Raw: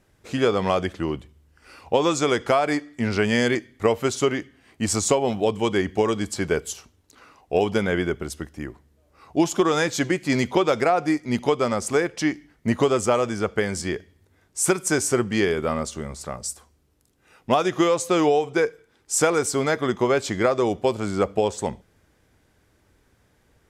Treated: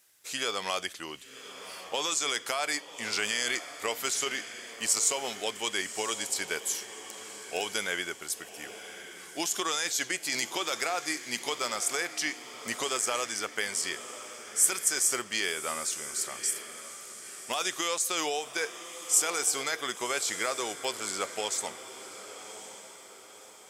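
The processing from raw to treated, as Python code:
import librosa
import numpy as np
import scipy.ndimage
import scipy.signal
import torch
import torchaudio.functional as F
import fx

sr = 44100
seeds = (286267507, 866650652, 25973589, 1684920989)

p1 = np.diff(x, prepend=0.0)
p2 = fx.over_compress(p1, sr, threshold_db=-38.0, ratio=-0.5)
p3 = p1 + (p2 * librosa.db_to_amplitude(1.5))
y = fx.echo_diffused(p3, sr, ms=1096, feedback_pct=45, wet_db=-12.0)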